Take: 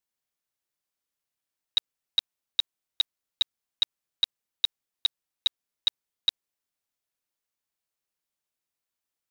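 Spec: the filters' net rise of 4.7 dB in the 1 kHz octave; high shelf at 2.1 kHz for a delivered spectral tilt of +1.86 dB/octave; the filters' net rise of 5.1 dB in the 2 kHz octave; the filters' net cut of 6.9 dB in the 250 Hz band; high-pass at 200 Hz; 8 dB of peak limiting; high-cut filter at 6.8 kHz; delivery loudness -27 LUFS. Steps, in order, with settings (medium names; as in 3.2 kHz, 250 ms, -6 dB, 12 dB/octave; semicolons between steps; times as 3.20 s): high-pass 200 Hz; low-pass 6.8 kHz; peaking EQ 250 Hz -8 dB; peaking EQ 1 kHz +5 dB; peaking EQ 2 kHz +8.5 dB; treble shelf 2.1 kHz -5 dB; trim +12 dB; peak limiter -10 dBFS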